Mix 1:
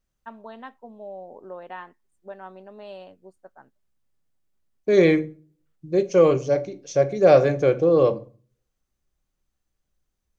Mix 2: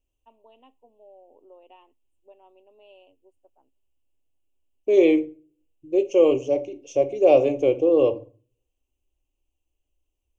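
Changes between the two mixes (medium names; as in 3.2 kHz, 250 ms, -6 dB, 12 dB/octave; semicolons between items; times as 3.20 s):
first voice -11.0 dB; master: add FFT filter 110 Hz 0 dB, 180 Hz -27 dB, 270 Hz +2 dB, 990 Hz -4 dB, 1.6 kHz -28 dB, 2.8 kHz +8 dB, 4.2 kHz -17 dB, 6.8 kHz -3 dB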